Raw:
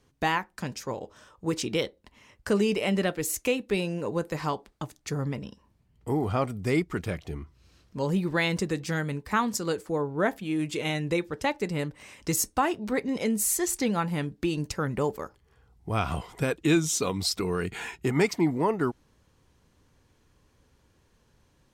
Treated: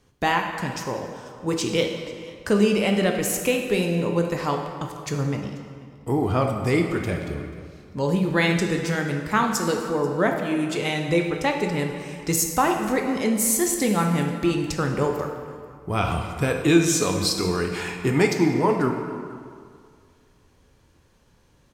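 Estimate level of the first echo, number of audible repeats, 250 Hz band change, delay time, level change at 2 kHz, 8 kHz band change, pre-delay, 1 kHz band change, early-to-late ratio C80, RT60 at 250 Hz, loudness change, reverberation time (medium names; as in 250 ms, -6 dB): -21.5 dB, 1, +5.5 dB, 487 ms, +5.0 dB, +4.5 dB, 12 ms, +5.5 dB, 6.5 dB, 2.0 s, +5.0 dB, 2.1 s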